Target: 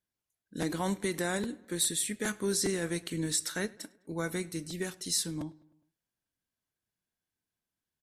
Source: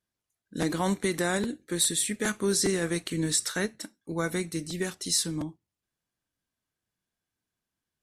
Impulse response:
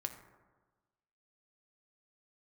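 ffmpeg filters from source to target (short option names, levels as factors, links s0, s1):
-filter_complex "[0:a]equalizer=f=12000:t=o:w=0.32:g=3.5,bandreject=f=1200:w=17,asplit=2[s0][s1];[s1]adelay=103,lowpass=f=3800:p=1,volume=0.0708,asplit=2[s2][s3];[s3]adelay=103,lowpass=f=3800:p=1,volume=0.55,asplit=2[s4][s5];[s5]adelay=103,lowpass=f=3800:p=1,volume=0.55,asplit=2[s6][s7];[s7]adelay=103,lowpass=f=3800:p=1,volume=0.55[s8];[s0][s2][s4][s6][s8]amix=inputs=5:normalize=0,volume=0.596"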